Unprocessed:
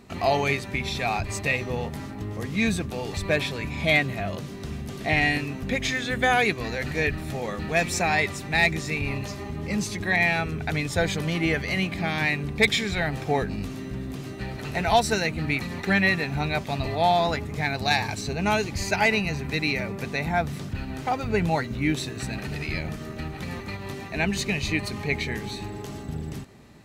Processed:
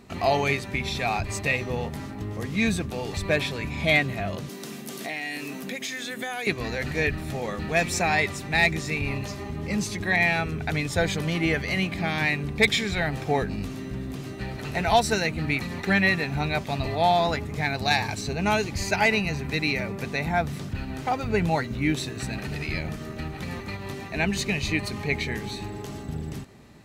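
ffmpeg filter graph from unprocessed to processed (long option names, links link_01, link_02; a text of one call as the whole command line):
ffmpeg -i in.wav -filter_complex "[0:a]asettb=1/sr,asplit=3[link_01][link_02][link_03];[link_01]atrim=end=4.494[link_04];[link_02]atrim=start=4.49:end=6.47,asetpts=PTS-STARTPTS,afade=type=in:duration=0.004:curve=qsin,afade=type=out:start_time=1.976:duration=0.004:curve=qsin,highpass=frequency=190:width=0.5412,highpass=frequency=190:width=1.3066,aemphasis=mode=production:type=50kf,acompressor=threshold=-30dB:ratio=4:attack=3.2:release=140:knee=1:detection=peak[link_05];[link_03]atrim=start=6.466[link_06];[link_04][link_05]acrossfade=duration=0.004:curve1=hsin:curve2=qsin[link_07];[link_07][link_06]acrossfade=duration=0.004:curve1=qsin:curve2=hsin" out.wav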